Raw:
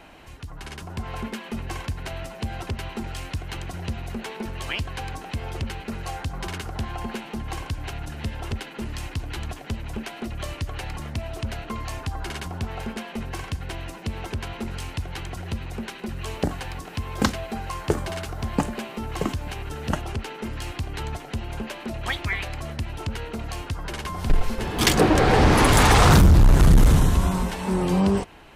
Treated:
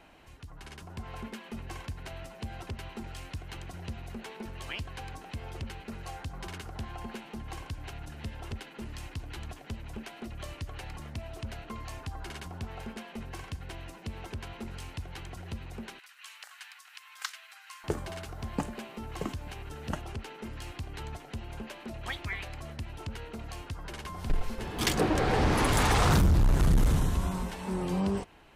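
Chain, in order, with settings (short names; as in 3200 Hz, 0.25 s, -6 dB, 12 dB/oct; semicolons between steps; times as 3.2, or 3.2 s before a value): 15.99–17.84 HPF 1300 Hz 24 dB/oct; gain -9 dB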